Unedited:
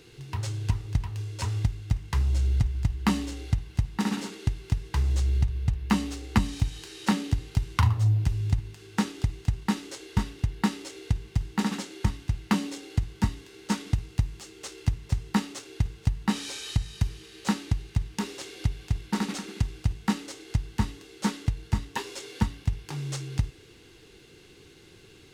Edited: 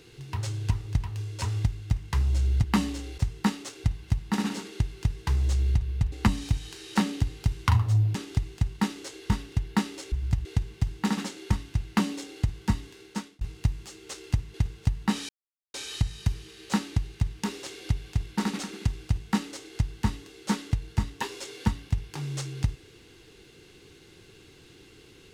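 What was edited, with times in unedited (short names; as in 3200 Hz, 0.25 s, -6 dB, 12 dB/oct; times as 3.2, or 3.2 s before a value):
2.64–2.97 move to 10.99
5.79–6.23 cut
8.26–9.02 cut
13.49–13.95 fade out
15.08–15.74 move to 3.51
16.49 insert silence 0.45 s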